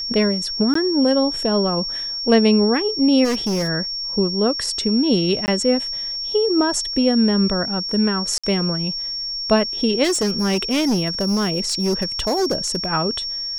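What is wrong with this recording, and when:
tone 5500 Hz -24 dBFS
0.74–0.75 gap 14 ms
3.24–3.69 clipped -17.5 dBFS
5.46–5.48 gap 19 ms
8.38–8.44 gap 56 ms
10.03–12.88 clipped -15.5 dBFS

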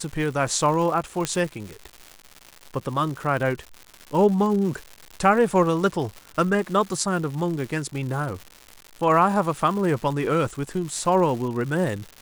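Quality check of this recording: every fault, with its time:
crackle 260/s -31 dBFS
1.25 pop -9 dBFS

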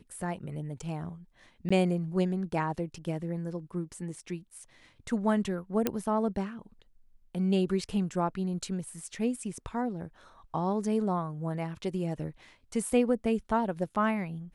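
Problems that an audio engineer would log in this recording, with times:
1.69–1.71 gap 15 ms
5.87 pop -12 dBFS

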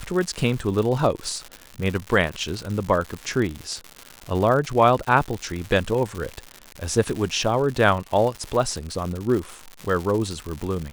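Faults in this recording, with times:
crackle 180/s -27 dBFS

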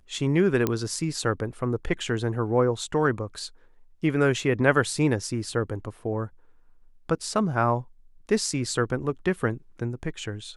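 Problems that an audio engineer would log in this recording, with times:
0.67 pop -10 dBFS

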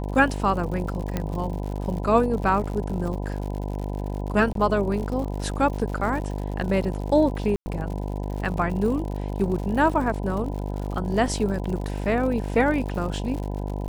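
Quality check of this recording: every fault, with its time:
buzz 50 Hz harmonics 20 -29 dBFS
crackle 93/s -32 dBFS
1.17 pop -12 dBFS
4.53–4.55 gap 23 ms
7.56–7.66 gap 0.1 s

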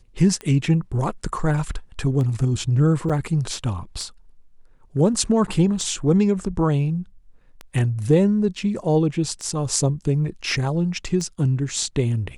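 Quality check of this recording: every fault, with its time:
tick 33 1/3 rpm -18 dBFS
3.09–3.1 gap 6.6 ms

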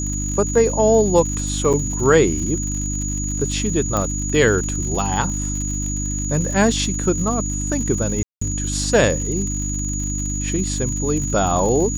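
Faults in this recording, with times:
crackle 90/s -27 dBFS
hum 50 Hz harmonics 6 -25 dBFS
tone 6800 Hz -26 dBFS
1.73–1.74 gap 6.3 ms
3.97 pop -8 dBFS
8.23–8.41 gap 0.184 s

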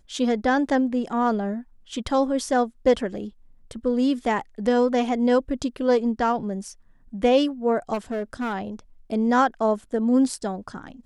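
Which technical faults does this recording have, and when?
7.93–8.54 clipped -23 dBFS

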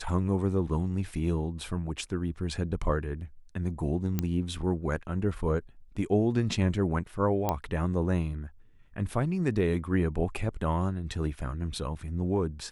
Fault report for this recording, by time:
4.19 pop -14 dBFS
7.49 pop -13 dBFS

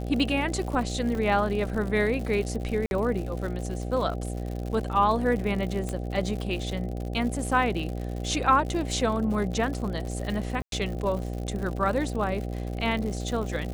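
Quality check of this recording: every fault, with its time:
buzz 60 Hz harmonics 13 -32 dBFS
crackle 99/s -33 dBFS
1.15 gap 2.8 ms
2.86–2.91 gap 51 ms
5.89 pop -18 dBFS
10.62–10.72 gap 0.102 s

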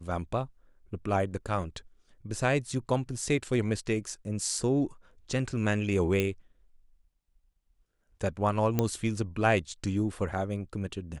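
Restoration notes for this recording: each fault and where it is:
6.2 pop -14 dBFS
8.79 pop -12 dBFS

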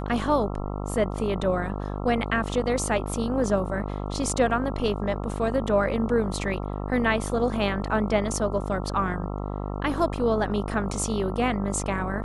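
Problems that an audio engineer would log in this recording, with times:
buzz 50 Hz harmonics 27 -31 dBFS

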